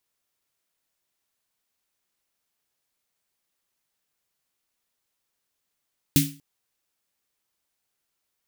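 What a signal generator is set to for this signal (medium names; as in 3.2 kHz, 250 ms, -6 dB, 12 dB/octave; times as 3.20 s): snare drum length 0.24 s, tones 150 Hz, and 280 Hz, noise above 2.1 kHz, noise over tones -3 dB, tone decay 0.35 s, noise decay 0.32 s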